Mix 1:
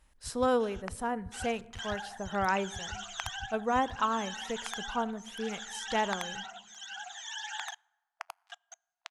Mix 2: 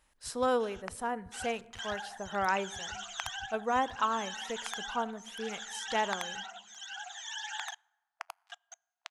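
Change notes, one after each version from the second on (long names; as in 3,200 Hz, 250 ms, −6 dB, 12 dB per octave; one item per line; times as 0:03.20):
master: add low-shelf EQ 210 Hz −10 dB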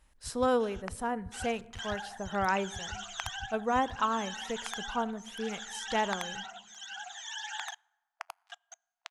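master: add low-shelf EQ 210 Hz +10 dB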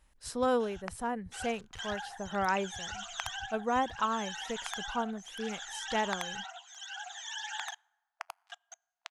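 speech: send off
first sound −6.5 dB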